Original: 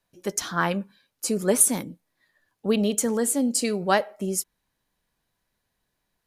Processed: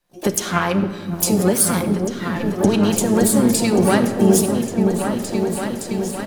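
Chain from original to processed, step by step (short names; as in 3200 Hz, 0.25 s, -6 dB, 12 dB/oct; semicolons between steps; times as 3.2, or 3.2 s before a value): recorder AGC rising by 52 dB/s; repeats that get brighter 0.566 s, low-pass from 400 Hz, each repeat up 2 oct, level -3 dB; harmoniser -12 st -14 dB, +7 st -12 dB, +12 st -15 dB; shoebox room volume 3600 m³, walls mixed, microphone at 0.9 m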